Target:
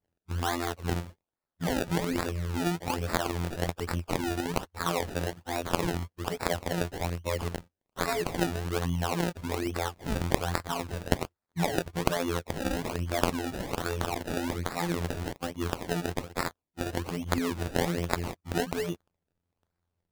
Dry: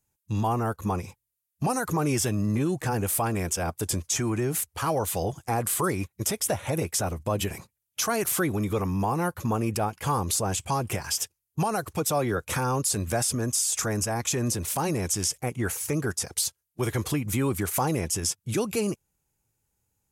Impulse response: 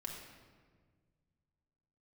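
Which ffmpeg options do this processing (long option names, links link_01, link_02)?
-af "afftfilt=real='hypot(re,im)*cos(PI*b)':imag='0':win_size=2048:overlap=0.75,acrusher=samples=28:mix=1:aa=0.000001:lfo=1:lforange=28:lforate=1.2"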